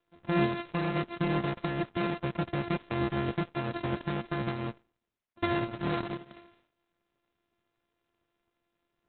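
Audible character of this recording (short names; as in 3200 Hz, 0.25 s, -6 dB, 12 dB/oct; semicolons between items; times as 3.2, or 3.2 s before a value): a buzz of ramps at a fixed pitch in blocks of 128 samples; Opus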